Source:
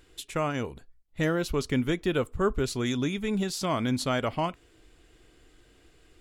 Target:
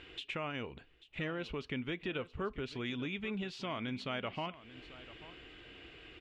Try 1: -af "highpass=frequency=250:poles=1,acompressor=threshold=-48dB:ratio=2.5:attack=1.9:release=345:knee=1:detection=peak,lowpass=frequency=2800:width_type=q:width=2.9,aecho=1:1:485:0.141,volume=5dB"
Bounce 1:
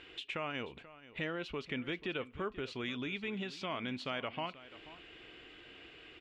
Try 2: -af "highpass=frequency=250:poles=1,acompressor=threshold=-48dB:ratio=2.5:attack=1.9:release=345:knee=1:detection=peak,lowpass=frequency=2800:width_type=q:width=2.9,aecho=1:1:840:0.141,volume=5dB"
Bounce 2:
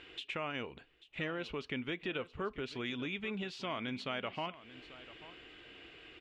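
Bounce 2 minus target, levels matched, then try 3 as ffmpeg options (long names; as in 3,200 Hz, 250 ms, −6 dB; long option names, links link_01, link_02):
125 Hz band −3.5 dB
-af "highpass=frequency=88:poles=1,acompressor=threshold=-48dB:ratio=2.5:attack=1.9:release=345:knee=1:detection=peak,lowpass=frequency=2800:width_type=q:width=2.9,aecho=1:1:840:0.141,volume=5dB"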